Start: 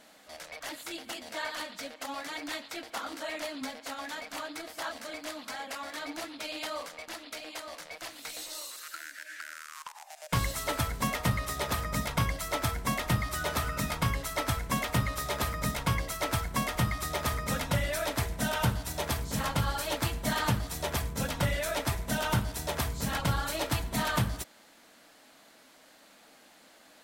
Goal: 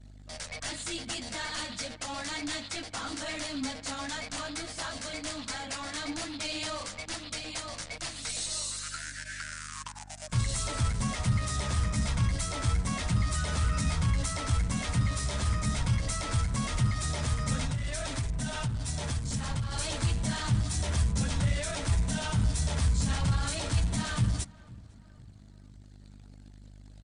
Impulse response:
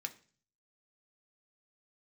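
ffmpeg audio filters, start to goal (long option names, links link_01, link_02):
-filter_complex "[0:a]alimiter=level_in=3dB:limit=-24dB:level=0:latency=1:release=35,volume=-3dB,asoftclip=type=tanh:threshold=-33.5dB,bass=frequency=250:gain=12,treble=frequency=4000:gain=7,aeval=exprs='val(0)+0.00316*(sin(2*PI*50*n/s)+sin(2*PI*2*50*n/s)/2+sin(2*PI*3*50*n/s)/3+sin(2*PI*4*50*n/s)/4+sin(2*PI*5*50*n/s)/5)':channel_layout=same,acontrast=25,flanger=delay=7.6:depth=3.8:regen=-39:speed=0.11:shape=triangular,asettb=1/sr,asplit=3[link_01][link_02][link_03];[link_01]atrim=end=17.644[link_04];[link_02]atrim=start=17.64:end=19.72,asetpts=PTS-STARTPTS,afade=type=in:duration=0.004:curve=qsin,afade=type=out:start_time=2.076:duration=0.004:curve=qsin,acompressor=threshold=-30dB:ratio=6[link_05];[link_03]atrim=start=19.716[link_06];[link_04][link_05]acrossfade=duration=0.004:curve1=hsin:curve2=qsin[link_07];[link_07][link_06]acrossfade=duration=0.004:curve1=qsin:curve2=hsin,equalizer=frequency=430:width=0.54:gain=-3.5,anlmdn=0.01,asplit=2[link_08][link_09];[link_09]adelay=502,lowpass=frequency=1900:poles=1,volume=-22dB,asplit=2[link_10][link_11];[link_11]adelay=502,lowpass=frequency=1900:poles=1,volume=0.51,asplit=2[link_12][link_13];[link_13]adelay=502,lowpass=frequency=1900:poles=1,volume=0.51,asplit=2[link_14][link_15];[link_15]adelay=502,lowpass=frequency=1900:poles=1,volume=0.51[link_16];[link_08][link_10][link_12][link_14][link_16]amix=inputs=5:normalize=0,volume=2.5dB" -ar 32000 -c:a mp2 -b:a 192k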